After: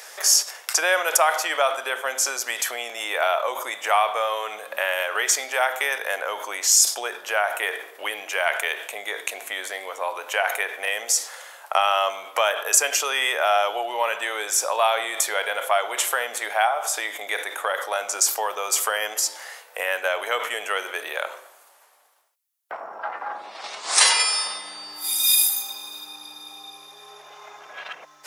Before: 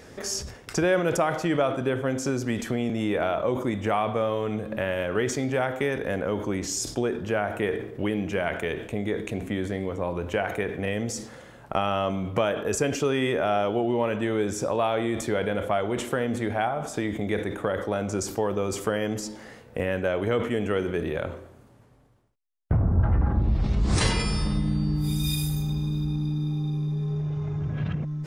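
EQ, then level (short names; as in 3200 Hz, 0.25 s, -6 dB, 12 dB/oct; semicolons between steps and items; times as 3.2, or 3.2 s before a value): HPF 700 Hz 24 dB/oct; high shelf 4700 Hz +9 dB; bell 12000 Hz +6 dB 0.38 oct; +7.5 dB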